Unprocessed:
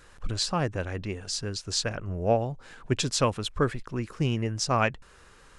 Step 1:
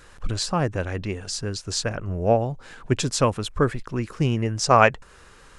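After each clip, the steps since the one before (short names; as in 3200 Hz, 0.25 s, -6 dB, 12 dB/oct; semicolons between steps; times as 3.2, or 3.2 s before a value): spectral gain 4.64–5.03, 380–8800 Hz +6 dB; dynamic EQ 3600 Hz, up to -5 dB, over -40 dBFS, Q 0.81; gain +4.5 dB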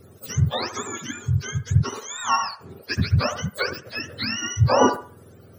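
spectrum mirrored in octaves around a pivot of 800 Hz; band-limited delay 70 ms, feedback 31%, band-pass 860 Hz, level -7.5 dB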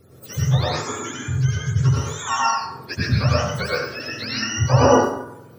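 plate-style reverb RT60 0.75 s, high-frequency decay 0.6×, pre-delay 80 ms, DRR -5.5 dB; gain -3.5 dB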